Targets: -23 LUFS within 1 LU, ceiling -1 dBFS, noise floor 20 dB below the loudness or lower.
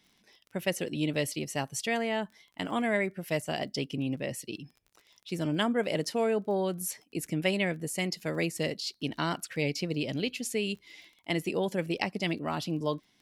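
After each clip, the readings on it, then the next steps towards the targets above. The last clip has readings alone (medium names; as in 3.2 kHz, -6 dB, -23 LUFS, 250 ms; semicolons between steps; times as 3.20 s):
tick rate 22 per s; loudness -32.0 LUFS; peak level -11.5 dBFS; loudness target -23.0 LUFS
-> de-click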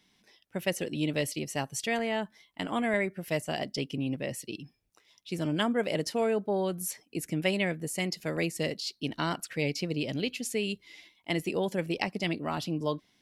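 tick rate 0 per s; loudness -32.0 LUFS; peak level -11.5 dBFS; loudness target -23.0 LUFS
-> trim +9 dB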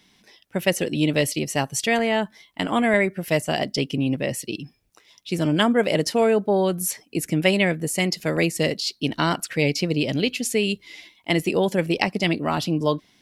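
loudness -23.0 LUFS; peak level -2.5 dBFS; noise floor -60 dBFS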